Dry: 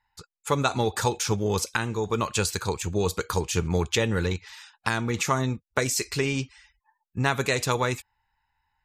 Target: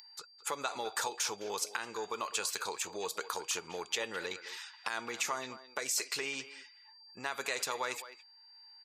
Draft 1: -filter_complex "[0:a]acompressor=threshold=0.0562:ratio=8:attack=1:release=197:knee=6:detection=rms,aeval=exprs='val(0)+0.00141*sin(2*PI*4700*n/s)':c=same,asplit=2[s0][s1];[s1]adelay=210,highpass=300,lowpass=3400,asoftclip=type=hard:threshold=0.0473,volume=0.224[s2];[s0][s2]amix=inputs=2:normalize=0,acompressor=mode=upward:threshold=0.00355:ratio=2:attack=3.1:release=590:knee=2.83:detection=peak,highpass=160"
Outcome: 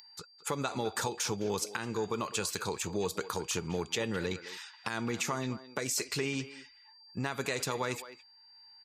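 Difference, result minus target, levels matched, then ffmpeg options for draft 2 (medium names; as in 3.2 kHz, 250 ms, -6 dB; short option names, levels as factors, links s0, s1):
125 Hz band +18.5 dB
-filter_complex "[0:a]acompressor=threshold=0.0562:ratio=8:attack=1:release=197:knee=6:detection=rms,aeval=exprs='val(0)+0.00141*sin(2*PI*4700*n/s)':c=same,asplit=2[s0][s1];[s1]adelay=210,highpass=300,lowpass=3400,asoftclip=type=hard:threshold=0.0473,volume=0.224[s2];[s0][s2]amix=inputs=2:normalize=0,acompressor=mode=upward:threshold=0.00355:ratio=2:attack=3.1:release=590:knee=2.83:detection=peak,highpass=580"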